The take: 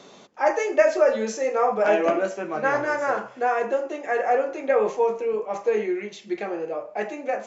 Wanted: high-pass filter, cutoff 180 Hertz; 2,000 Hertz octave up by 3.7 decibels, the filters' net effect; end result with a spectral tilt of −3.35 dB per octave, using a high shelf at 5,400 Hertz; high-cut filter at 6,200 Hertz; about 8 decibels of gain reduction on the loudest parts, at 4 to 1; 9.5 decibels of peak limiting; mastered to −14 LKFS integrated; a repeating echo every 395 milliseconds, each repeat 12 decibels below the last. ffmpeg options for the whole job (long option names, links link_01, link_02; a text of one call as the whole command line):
ffmpeg -i in.wav -af "highpass=180,lowpass=6200,equalizer=frequency=2000:width_type=o:gain=4,highshelf=frequency=5400:gain=8,acompressor=threshold=-22dB:ratio=4,alimiter=limit=-21dB:level=0:latency=1,aecho=1:1:395|790|1185:0.251|0.0628|0.0157,volume=16dB" out.wav